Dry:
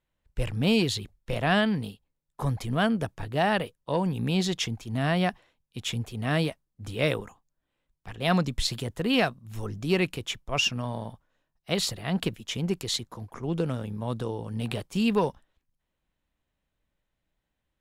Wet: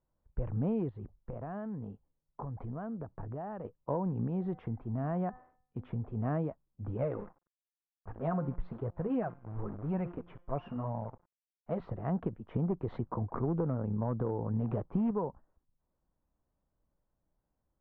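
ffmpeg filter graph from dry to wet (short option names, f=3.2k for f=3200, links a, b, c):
-filter_complex "[0:a]asettb=1/sr,asplit=3[a][b][c];[a]atrim=end=0.894[d];[b]atrim=start=0.89:end=3.65,asetpts=PTS-STARTPTS,afade=t=in:d=0.004:c=qsin,afade=t=out:st=2.756:d=0.004:c=qsin,highshelf=f=6.2k:g=-9,acompressor=threshold=-36dB:ratio=8:attack=3.2:release=140:knee=1:detection=peak[e];[c]atrim=start=3.646[f];[d][e]acrossfade=d=0.004:c1=hsin:c2=qsin[g];[g][f]acrossfade=d=0.004:c1=qsin:c2=hsin,asettb=1/sr,asplit=3[h][i][j];[h]atrim=end=4.274[k];[i]atrim=start=4.27:end=6.16,asetpts=PTS-STARTPTS,afade=t=in:d=0.004:c=qsin,afade=t=out:st=1.886:d=0.004:c=qsin,lowpass=10k,bandreject=f=252.3:t=h:w=4,bandreject=f=504.6:t=h:w=4,bandreject=f=756.9:t=h:w=4,bandreject=f=1.0092k:t=h:w=4,bandreject=f=1.2615k:t=h:w=4,bandreject=f=1.5138k:t=h:w=4,bandreject=f=1.7661k:t=h:w=4,bandreject=f=2.0184k:t=h:w=4,acompressor=threshold=-32dB:ratio=2:attack=3.2:release=140:knee=1:detection=peak[l];[j]atrim=start=6.156[m];[k][l]acrossfade=d=0.004:c1=hsin:c2=qsin[n];[n][m]acrossfade=d=0.004:c1=qsin:c2=hsin,asettb=1/sr,asplit=3[o][p][q];[o]atrim=end=6.974[r];[p]atrim=start=6.97:end=11.8,asetpts=PTS-STARTPTS,afade=t=in:d=0.004:c=qsin,afade=t=out:st=4.826:d=0.004:c=qsin,bandreject=f=175.4:t=h:w=4,bandreject=f=350.8:t=h:w=4,bandreject=f=526.2:t=h:w=4,bandreject=f=701.6:t=h:w=4,bandreject=f=877:t=h:w=4,bandreject=f=1.0524k:t=h:w=4,bandreject=f=1.2278k:t=h:w=4,bandreject=f=1.4032k:t=h:w=4,bandreject=f=1.5786k:t=h:w=4,bandreject=f=1.754k:t=h:w=4,bandreject=f=1.9294k:t=h:w=4,bandreject=f=2.1048k:t=h:w=4,bandreject=f=2.2802k:t=h:w=4,bandreject=f=2.4556k:t=h:w=4,bandreject=f=2.631k:t=h:w=4,bandreject=f=2.8064k:t=h:w=4,bandreject=f=2.9818k:t=h:w=4,bandreject=f=3.1572k:t=h:w=4,bandreject=f=3.3326k:t=h:w=4,bandreject=f=3.508k:t=h:w=4,bandreject=f=3.6834k:t=h:w=4,bandreject=f=3.8588k:t=h:w=4,bandreject=f=4.0342k:t=h:w=4,bandreject=f=4.2096k:t=h:w=4,bandreject=f=4.385k:t=h:w=4,bandreject=f=4.5604k:t=h:w=4,bandreject=f=4.7358k:t=h:w=4,bandreject=f=4.9112k:t=h:w=4,bandreject=f=5.0866k:t=h:w=4,bandreject=f=5.262k:t=h:w=4,bandreject=f=5.4374k:t=h:w=4,bandreject=f=5.6128k:t=h:w=4,bandreject=f=5.7882k:t=h:w=4,bandreject=f=5.9636k:t=h:w=4,flanger=delay=1.2:depth=6.6:regen=-14:speed=1:shape=sinusoidal,acrusher=bits=8:dc=4:mix=0:aa=0.000001[s];[q]atrim=start=11.796[t];[r][s]acrossfade=d=0.004:c1=hsin:c2=qsin[u];[u][t]acrossfade=d=0.004:c1=qsin:c2=hsin,asettb=1/sr,asplit=3[v][w][x];[v]atrim=end=12.544[y];[w]atrim=start=12.54:end=15.11,asetpts=PTS-STARTPTS,afade=t=in:d=0.004:c=qsin,afade=t=out:st=2.566:d=0.004:c=qsin,acontrast=79,asoftclip=type=hard:threshold=-15.5dB[z];[x]atrim=start=15.106[aa];[y][z]acrossfade=d=0.004:c1=hsin:c2=qsin[ab];[ab][aa]acrossfade=d=0.004:c1=qsin:c2=hsin,lowpass=f=1.2k:w=0.5412,lowpass=f=1.2k:w=1.3066,acompressor=threshold=-29dB:ratio=6"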